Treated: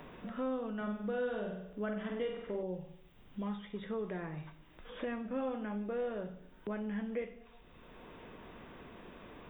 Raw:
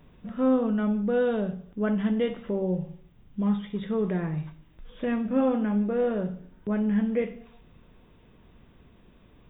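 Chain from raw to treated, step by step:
parametric band 150 Hz −9.5 dB 2.2 octaves
0:00.76–0:02.63: flutter between parallel walls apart 8.3 metres, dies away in 0.64 s
multiband upward and downward compressor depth 70%
level −7 dB

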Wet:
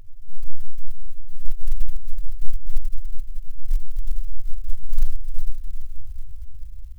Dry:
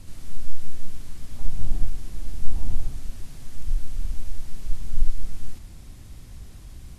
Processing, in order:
expanding power law on the bin magnitudes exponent 3.2
feedback delay with all-pass diffusion 470 ms, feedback 50%, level −6 dB
converter with an unsteady clock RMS 0.1 ms
level +4 dB

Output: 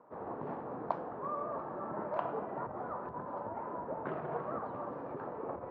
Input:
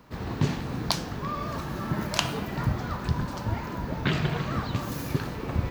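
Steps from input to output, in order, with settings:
spectral tilt −4.5 dB per octave
brickwall limiter −9 dBFS, peak gain reduction 10.5 dB
flat-topped band-pass 800 Hz, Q 1
level −2.5 dB

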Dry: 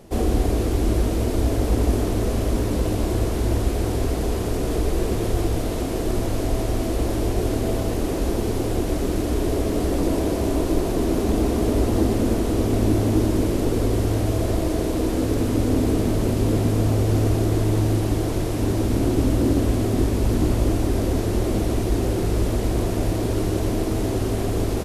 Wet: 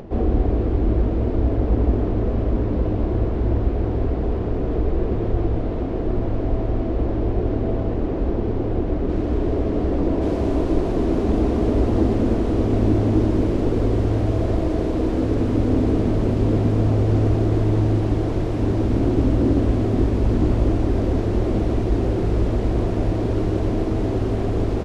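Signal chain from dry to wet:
upward compression, threshold −30 dBFS
head-to-tape spacing loss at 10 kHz 44 dB, from 0:09.08 at 10 kHz 34 dB, from 0:10.21 at 10 kHz 22 dB
level +2 dB

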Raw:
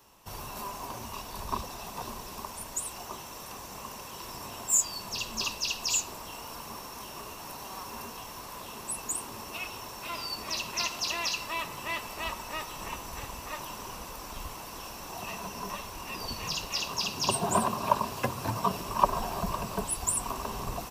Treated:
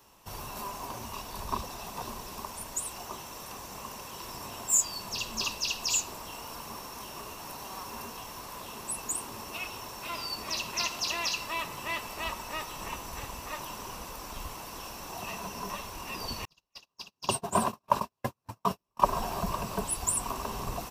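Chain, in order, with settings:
0:16.45–0:19.06: noise gate −27 dBFS, range −48 dB

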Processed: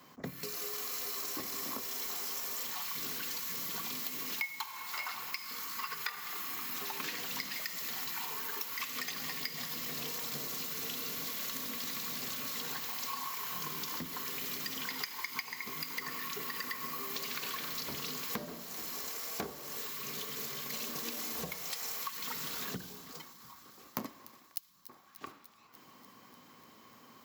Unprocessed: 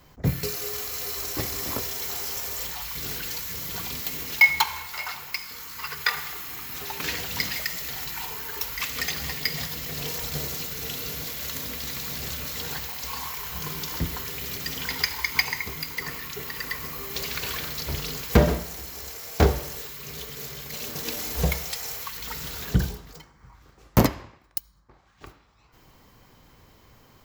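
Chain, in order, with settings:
high-pass filter 180 Hz 12 dB per octave
hollow resonant body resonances 230/1,100 Hz, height 9 dB, ringing for 30 ms
downward compressor 10 to 1, threshold −33 dBFS, peak gain reduction 24 dB
low-shelf EQ 490 Hz −5.5 dB
delay with a high-pass on its return 295 ms, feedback 74%, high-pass 3,400 Hz, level −14 dB
level −1.5 dB

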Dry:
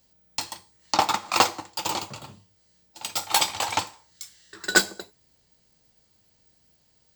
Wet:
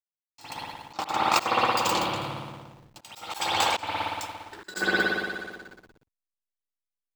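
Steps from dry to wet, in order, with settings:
spring reverb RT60 1.9 s, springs 57 ms, chirp 50 ms, DRR −4 dB
slack as between gear wheels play −40 dBFS
volume swells 254 ms

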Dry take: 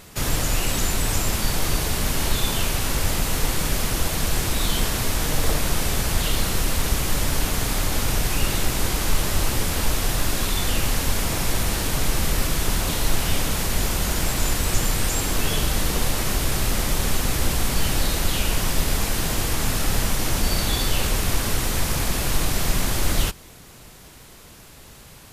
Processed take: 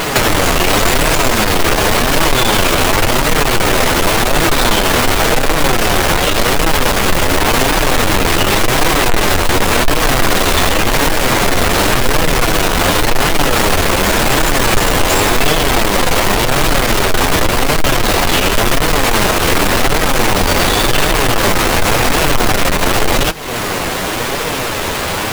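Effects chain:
each half-wave held at its own peak
bass and treble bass −12 dB, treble −5 dB
downward compressor 5 to 1, threshold −38 dBFS, peak gain reduction 16.5 dB
flanger 0.9 Hz, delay 6 ms, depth 6.2 ms, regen +39%
boost into a limiter +32 dB
level −1 dB

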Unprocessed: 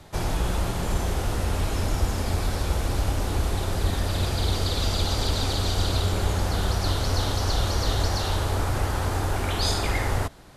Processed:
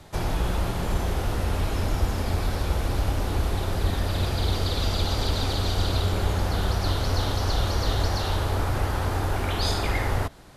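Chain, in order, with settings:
dynamic equaliser 7,800 Hz, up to −6 dB, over −47 dBFS, Q 1.1

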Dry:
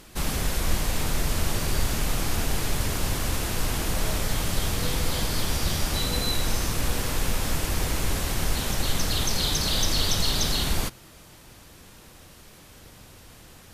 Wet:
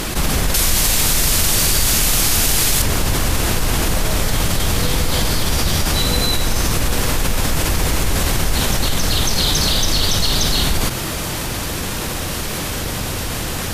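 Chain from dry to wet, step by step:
0:00.54–0:02.82: high-shelf EQ 2,500 Hz +12 dB
envelope flattener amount 70%
level +3 dB

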